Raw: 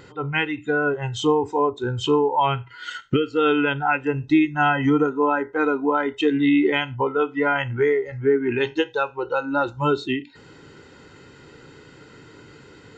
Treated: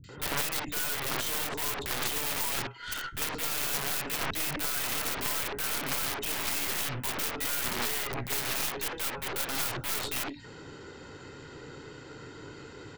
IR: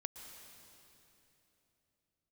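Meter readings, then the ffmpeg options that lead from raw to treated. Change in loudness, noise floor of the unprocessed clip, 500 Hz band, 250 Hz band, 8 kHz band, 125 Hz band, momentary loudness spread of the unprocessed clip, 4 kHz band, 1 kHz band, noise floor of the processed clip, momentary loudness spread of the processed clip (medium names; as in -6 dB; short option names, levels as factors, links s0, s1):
-8.5 dB, -48 dBFS, -19.0 dB, -20.5 dB, no reading, -13.0 dB, 6 LU, -1.0 dB, -13.5 dB, -47 dBFS, 17 LU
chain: -filter_complex "[0:a]aeval=exprs='(mod(18.8*val(0)+1,2)-1)/18.8':c=same,acrossover=split=200|2300[s0][s1][s2];[s2]adelay=40[s3];[s1]adelay=90[s4];[s0][s4][s3]amix=inputs=3:normalize=0,aeval=exprs='0.158*(cos(1*acos(clip(val(0)/0.158,-1,1)))-cos(1*PI/2))+0.0251*(cos(6*acos(clip(val(0)/0.158,-1,1)))-cos(6*PI/2))+0.0562*(cos(7*acos(clip(val(0)/0.158,-1,1)))-cos(7*PI/2))':c=same,volume=0.841"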